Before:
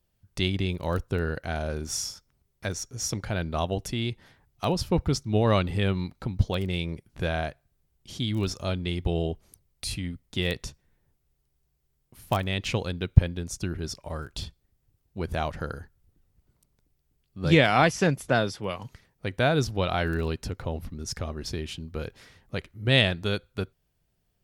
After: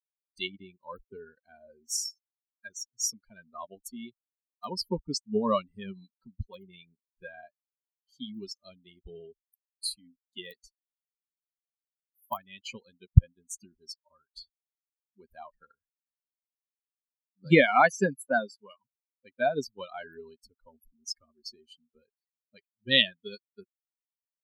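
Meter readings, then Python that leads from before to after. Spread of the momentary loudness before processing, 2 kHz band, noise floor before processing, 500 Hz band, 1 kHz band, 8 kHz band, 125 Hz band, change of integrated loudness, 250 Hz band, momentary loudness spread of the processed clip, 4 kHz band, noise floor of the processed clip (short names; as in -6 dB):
14 LU, -2.0 dB, -74 dBFS, -4.0 dB, -1.5 dB, -1.0 dB, -7.0 dB, 0.0 dB, -6.0 dB, 23 LU, -2.0 dB, under -85 dBFS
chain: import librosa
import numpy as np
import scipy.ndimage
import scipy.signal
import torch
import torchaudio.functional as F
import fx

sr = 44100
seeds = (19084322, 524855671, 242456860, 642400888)

y = fx.bin_expand(x, sr, power=3.0)
y = fx.low_shelf(y, sr, hz=350.0, db=-4.5)
y = fx.notch(y, sr, hz=2600.0, q=14.0)
y = y * librosa.db_to_amplitude(6.0)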